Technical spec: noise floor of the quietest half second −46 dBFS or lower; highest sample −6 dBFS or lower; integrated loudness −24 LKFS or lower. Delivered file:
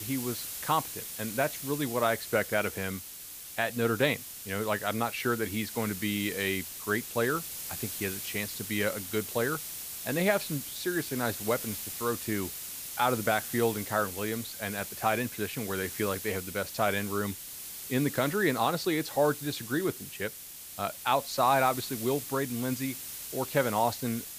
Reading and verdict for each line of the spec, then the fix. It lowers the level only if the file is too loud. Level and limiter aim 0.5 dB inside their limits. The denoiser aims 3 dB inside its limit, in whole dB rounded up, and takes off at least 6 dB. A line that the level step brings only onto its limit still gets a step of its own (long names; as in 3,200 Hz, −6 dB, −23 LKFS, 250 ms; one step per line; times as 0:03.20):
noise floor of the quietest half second −45 dBFS: out of spec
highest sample −11.5 dBFS: in spec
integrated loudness −30.5 LKFS: in spec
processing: broadband denoise 6 dB, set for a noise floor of −45 dBFS